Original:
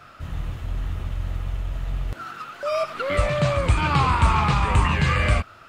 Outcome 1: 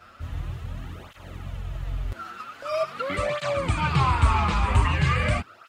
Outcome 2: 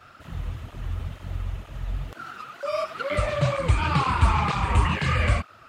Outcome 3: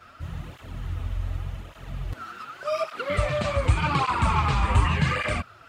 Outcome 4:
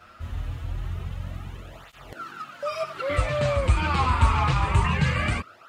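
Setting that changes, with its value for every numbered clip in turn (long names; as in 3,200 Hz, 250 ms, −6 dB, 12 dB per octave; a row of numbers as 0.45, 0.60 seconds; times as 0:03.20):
through-zero flanger with one copy inverted, nulls at: 0.44, 2.1, 0.86, 0.26 Hertz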